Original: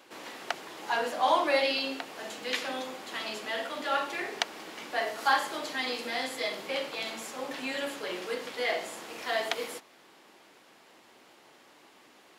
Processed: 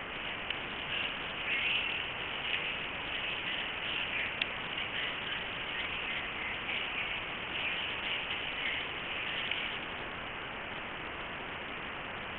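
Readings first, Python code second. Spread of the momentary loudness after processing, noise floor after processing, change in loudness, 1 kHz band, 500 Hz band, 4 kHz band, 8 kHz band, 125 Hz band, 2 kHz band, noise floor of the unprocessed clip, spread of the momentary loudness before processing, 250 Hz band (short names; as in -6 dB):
7 LU, -41 dBFS, -3.0 dB, -9.0 dB, -11.5 dB, +1.0 dB, under -35 dB, +11.0 dB, +0.5 dB, -58 dBFS, 12 LU, -6.0 dB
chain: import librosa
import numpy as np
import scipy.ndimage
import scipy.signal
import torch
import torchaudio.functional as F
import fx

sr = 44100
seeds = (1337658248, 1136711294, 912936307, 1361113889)

p1 = scipy.signal.sosfilt(scipy.signal.butter(6, 2400.0, 'highpass', fs=sr, output='sos'), x)
p2 = fx.over_compress(p1, sr, threshold_db=-44.0, ratio=-0.5)
p3 = p1 + (p2 * 10.0 ** (-0.5 / 20.0))
p4 = fx.quant_dither(p3, sr, seeds[0], bits=6, dither='triangular')
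p5 = fx.brickwall_lowpass(p4, sr, high_hz=3100.0)
p6 = p5 + fx.echo_single(p5, sr, ms=312, db=-11.5, dry=0)
p7 = fx.doppler_dist(p6, sr, depth_ms=0.2)
y = p7 * 10.0 ** (3.5 / 20.0)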